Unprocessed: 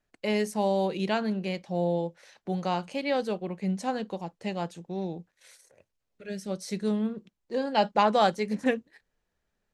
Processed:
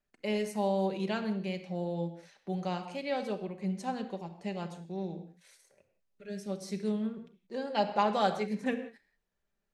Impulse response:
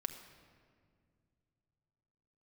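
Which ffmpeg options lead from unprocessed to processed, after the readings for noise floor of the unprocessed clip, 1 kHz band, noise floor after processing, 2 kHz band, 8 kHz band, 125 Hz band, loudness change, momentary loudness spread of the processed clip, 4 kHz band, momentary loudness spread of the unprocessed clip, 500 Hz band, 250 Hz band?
-81 dBFS, -5.0 dB, -82 dBFS, -5.5 dB, -6.0 dB, -3.5 dB, -5.0 dB, 12 LU, -5.5 dB, 12 LU, -5.0 dB, -4.0 dB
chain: -filter_complex "[1:a]atrim=start_sample=2205,afade=t=out:st=0.24:d=0.01,atrim=end_sample=11025[a];[0:a][a]afir=irnorm=-1:irlink=0,volume=-4.5dB"

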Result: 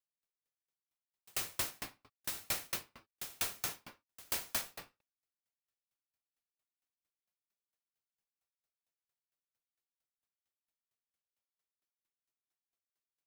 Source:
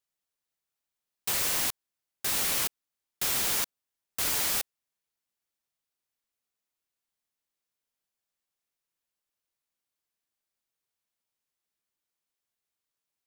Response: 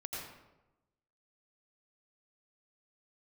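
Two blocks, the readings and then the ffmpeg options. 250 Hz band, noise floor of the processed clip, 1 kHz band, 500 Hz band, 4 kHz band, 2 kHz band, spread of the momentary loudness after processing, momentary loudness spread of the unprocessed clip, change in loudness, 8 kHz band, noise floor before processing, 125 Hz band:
-9.5 dB, under -85 dBFS, -9.0 dB, -9.0 dB, -10.5 dB, -9.0 dB, 13 LU, 9 LU, -11.0 dB, -11.5 dB, under -85 dBFS, -7.5 dB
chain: -filter_complex "[1:a]atrim=start_sample=2205,afade=t=out:st=0.44:d=0.01,atrim=end_sample=19845[a];[0:a][a]afir=irnorm=-1:irlink=0,aeval=exprs='val(0)*pow(10,-39*if(lt(mod(4.4*n/s,1),2*abs(4.4)/1000),1-mod(4.4*n/s,1)/(2*abs(4.4)/1000),(mod(4.4*n/s,1)-2*abs(4.4)/1000)/(1-2*abs(4.4)/1000))/20)':c=same"

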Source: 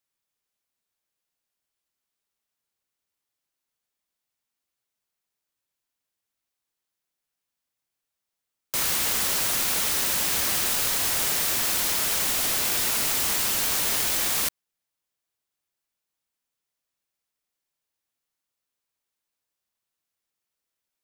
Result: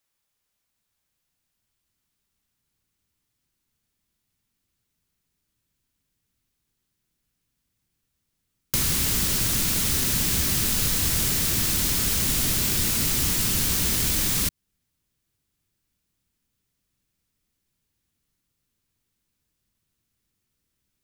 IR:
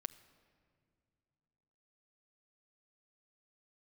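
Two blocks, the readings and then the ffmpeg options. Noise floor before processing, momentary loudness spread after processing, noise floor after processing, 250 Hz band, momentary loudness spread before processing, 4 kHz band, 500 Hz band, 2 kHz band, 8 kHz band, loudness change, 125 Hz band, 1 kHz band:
-85 dBFS, 0 LU, -79 dBFS, +9.0 dB, 0 LU, +0.5 dB, -1.0 dB, -2.0 dB, +1.0 dB, +1.0 dB, +14.0 dB, -4.5 dB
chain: -filter_complex "[0:a]acrossover=split=3600|7700[a][b][c];[a]acompressor=threshold=-39dB:ratio=4[d];[b]acompressor=threshold=-36dB:ratio=4[e];[c]acompressor=threshold=-30dB:ratio=4[f];[d][e][f]amix=inputs=3:normalize=0,asubboost=boost=8:cutoff=230,volume=6dB"

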